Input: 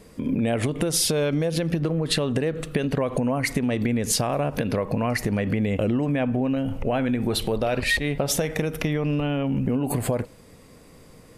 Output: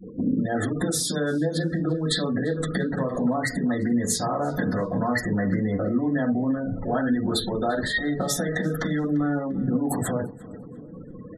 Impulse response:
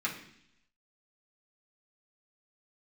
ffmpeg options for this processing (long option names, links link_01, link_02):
-filter_complex "[0:a]acompressor=threshold=-32dB:ratio=10,adynamicequalizer=threshold=0.00282:dfrequency=5200:dqfactor=1.1:tfrequency=5200:tqfactor=1.1:attack=5:release=100:ratio=0.375:range=1.5:mode=cutabove:tftype=bell,asuperstop=centerf=2500:order=12:qfactor=2.1,asoftclip=type=tanh:threshold=-21.5dB,bass=frequency=250:gain=-4,treble=frequency=4000:gain=1[link_01];[1:a]atrim=start_sample=2205,atrim=end_sample=3969[link_02];[link_01][link_02]afir=irnorm=-1:irlink=0,afftfilt=real='re*gte(hypot(re,im),0.01)':imag='im*gte(hypot(re,im),0.01)':win_size=1024:overlap=0.75,asplit=2[link_03][link_04];[link_04]adelay=345,lowpass=frequency=3400:poles=1,volume=-20dB,asplit=2[link_05][link_06];[link_06]adelay=345,lowpass=frequency=3400:poles=1,volume=0.42,asplit=2[link_07][link_08];[link_08]adelay=345,lowpass=frequency=3400:poles=1,volume=0.42[link_09];[link_03][link_05][link_07][link_09]amix=inputs=4:normalize=0,volume=8.5dB"